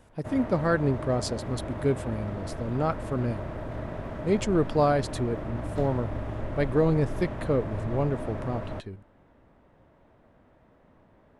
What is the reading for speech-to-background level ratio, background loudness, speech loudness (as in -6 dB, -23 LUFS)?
7.5 dB, -36.0 LUFS, -28.5 LUFS